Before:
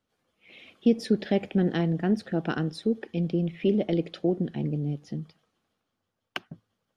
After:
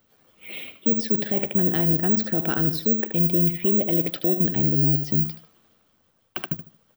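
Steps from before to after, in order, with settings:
reversed playback
downward compressor 6 to 1, threshold −31 dBFS, peak gain reduction 14.5 dB
reversed playback
repeating echo 76 ms, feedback 28%, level −12 dB
bad sample-rate conversion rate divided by 2×, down none, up zero stuff
boost into a limiter +21.5 dB
level −9 dB

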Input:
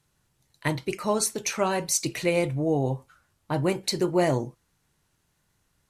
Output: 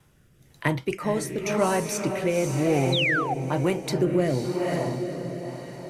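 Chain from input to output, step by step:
pitch vibrato 0.48 Hz 12 cents
on a send: feedback delay with all-pass diffusion 491 ms, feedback 41%, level −5 dB
on the sum: sound drawn into the spectrogram fall, 0:02.92–0:03.34, 700–4,200 Hz −20 dBFS
parametric band 7,300 Hz −7 dB 1.9 octaves
notch filter 4,200 Hz, Q 7.6
in parallel at −6 dB: soft clipping −20 dBFS, distortion −14 dB
on the sum: rotating-speaker cabinet horn 1 Hz
multiband upward and downward compressor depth 40%

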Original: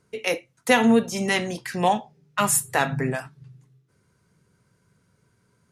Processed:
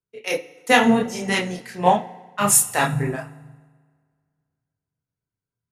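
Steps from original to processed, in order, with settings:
multi-voice chorus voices 4, 0.91 Hz, delay 29 ms, depth 4.3 ms
feedback delay network reverb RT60 3.3 s, high-frequency decay 0.75×, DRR 14.5 dB
multiband upward and downward expander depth 70%
level +3.5 dB

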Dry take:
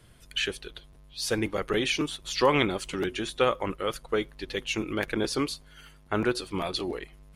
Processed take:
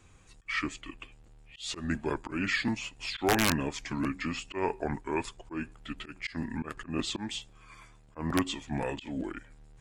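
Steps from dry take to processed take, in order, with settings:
volume swells 126 ms
wrap-around overflow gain 14.5 dB
speed change −25%
level −2 dB

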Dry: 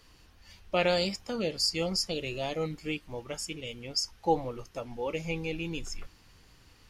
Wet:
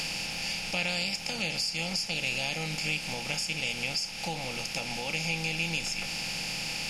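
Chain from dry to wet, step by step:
compressor on every frequency bin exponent 0.4
high-shelf EQ 2,600 Hz +10 dB
notch filter 1,200 Hz, Q 8.5
downward compressor 3 to 1, threshold −29 dBFS, peak gain reduction 12 dB
graphic EQ with 15 bands 160 Hz +9 dB, 400 Hz −9 dB, 2,500 Hz +9 dB
level −4 dB

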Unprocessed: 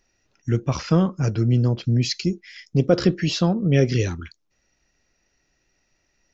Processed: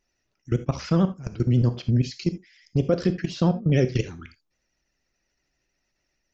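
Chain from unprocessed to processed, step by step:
output level in coarse steps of 19 dB
pitch vibrato 13 Hz 85 cents
reverb whose tail is shaped and stops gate 100 ms flat, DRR 10 dB

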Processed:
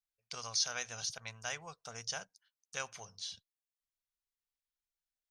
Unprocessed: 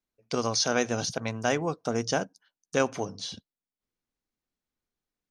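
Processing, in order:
guitar amp tone stack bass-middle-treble 10-0-10
level −4.5 dB

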